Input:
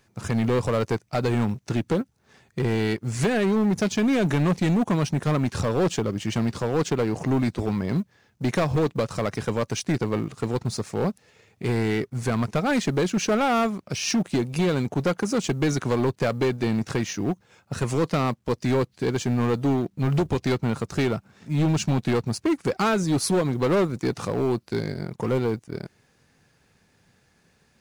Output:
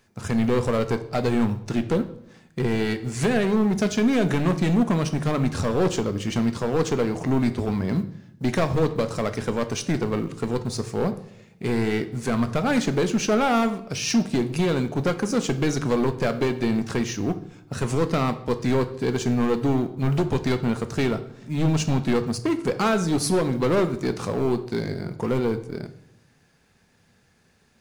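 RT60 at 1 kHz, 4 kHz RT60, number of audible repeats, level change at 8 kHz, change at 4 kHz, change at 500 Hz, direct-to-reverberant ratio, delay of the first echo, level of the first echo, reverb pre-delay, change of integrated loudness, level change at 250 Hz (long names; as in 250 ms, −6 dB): 0.65 s, 0.60 s, no echo audible, +0.5 dB, +0.5 dB, +1.0 dB, 9.0 dB, no echo audible, no echo audible, 3 ms, +0.5 dB, +1.5 dB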